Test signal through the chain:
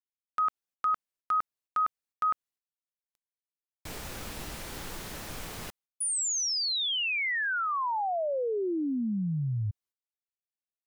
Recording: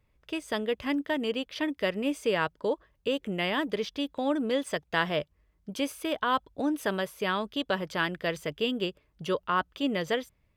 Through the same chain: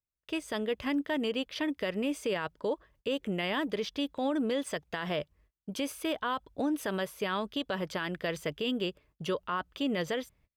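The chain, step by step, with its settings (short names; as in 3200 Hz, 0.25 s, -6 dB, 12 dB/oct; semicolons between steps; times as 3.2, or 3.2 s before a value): gate -60 dBFS, range -29 dB; limiter -22.5 dBFS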